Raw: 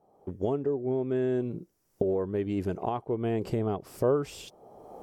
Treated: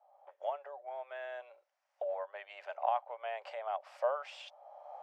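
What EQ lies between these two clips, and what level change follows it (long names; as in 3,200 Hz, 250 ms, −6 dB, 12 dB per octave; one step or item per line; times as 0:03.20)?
Chebyshev high-pass with heavy ripple 560 Hz, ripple 3 dB
low-pass filter 3,000 Hz 12 dB per octave
+2.0 dB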